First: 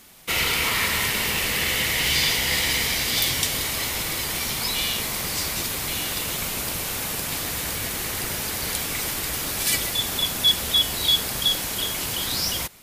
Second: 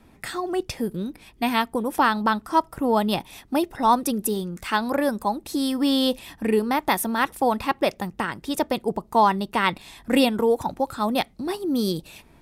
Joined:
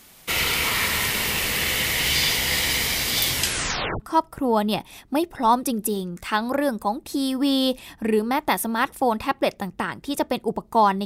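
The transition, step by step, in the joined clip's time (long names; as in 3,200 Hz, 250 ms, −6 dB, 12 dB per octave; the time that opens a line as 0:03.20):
first
0:03.36: tape stop 0.64 s
0:04.00: continue with second from 0:02.40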